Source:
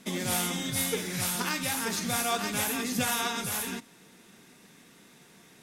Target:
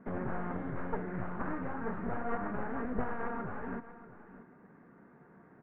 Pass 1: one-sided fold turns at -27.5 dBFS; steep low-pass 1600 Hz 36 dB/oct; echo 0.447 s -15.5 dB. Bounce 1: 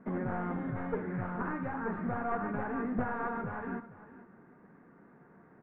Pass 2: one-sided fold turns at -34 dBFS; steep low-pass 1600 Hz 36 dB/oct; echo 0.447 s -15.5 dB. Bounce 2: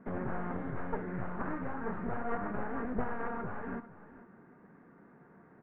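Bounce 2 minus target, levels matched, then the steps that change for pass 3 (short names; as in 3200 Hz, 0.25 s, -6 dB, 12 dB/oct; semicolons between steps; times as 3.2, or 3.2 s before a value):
echo 0.19 s early
change: echo 0.637 s -15.5 dB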